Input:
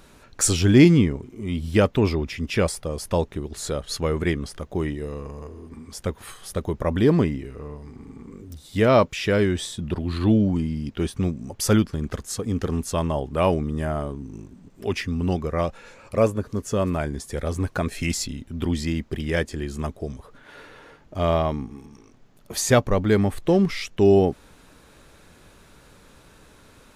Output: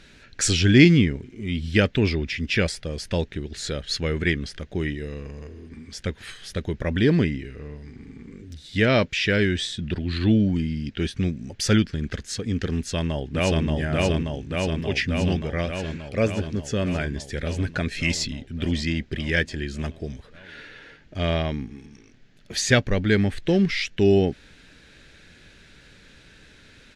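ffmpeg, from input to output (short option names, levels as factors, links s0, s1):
-filter_complex "[0:a]asplit=2[s0][s1];[s1]afade=t=in:st=12.76:d=0.01,afade=t=out:st=13.64:d=0.01,aecho=0:1:580|1160|1740|2320|2900|3480|4060|4640|5220|5800|6380|6960:0.944061|0.708046|0.531034|0.398276|0.298707|0.22403|0.168023|0.126017|0.0945127|0.0708845|0.0531634|0.0398725[s2];[s0][s2]amix=inputs=2:normalize=0,firequalizer=gain_entry='entry(190,0);entry(1100,-11);entry(1600,6);entry(4200,5);entry(13000,-17)':delay=0.05:min_phase=1"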